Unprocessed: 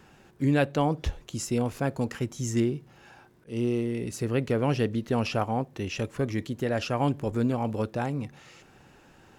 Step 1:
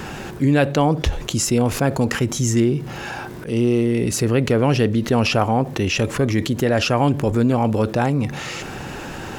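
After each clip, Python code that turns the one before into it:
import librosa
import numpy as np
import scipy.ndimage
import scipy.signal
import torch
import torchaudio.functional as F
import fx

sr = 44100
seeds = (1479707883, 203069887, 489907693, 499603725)

y = fx.env_flatten(x, sr, amount_pct=50)
y = y * librosa.db_to_amplitude(6.5)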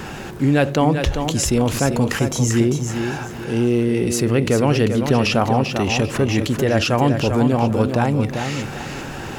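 y = fx.echo_feedback(x, sr, ms=394, feedback_pct=28, wet_db=-7)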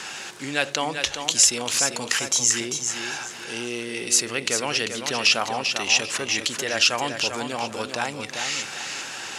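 y = fx.weighting(x, sr, curve='ITU-R 468')
y = y * librosa.db_to_amplitude(-5.0)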